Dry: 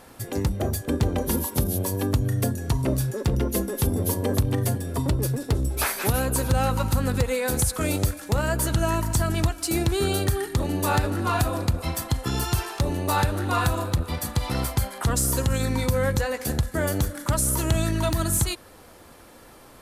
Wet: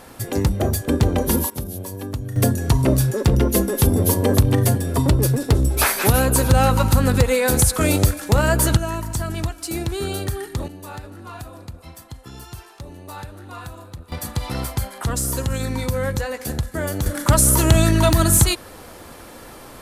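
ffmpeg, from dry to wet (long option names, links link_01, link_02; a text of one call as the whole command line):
ffmpeg -i in.wav -af "asetnsamples=nb_out_samples=441:pad=0,asendcmd='1.5 volume volume -5dB;2.36 volume volume 7dB;8.77 volume volume -2dB;10.68 volume volume -12.5dB;14.12 volume volume 0dB;17.06 volume volume 8.5dB',volume=5.5dB" out.wav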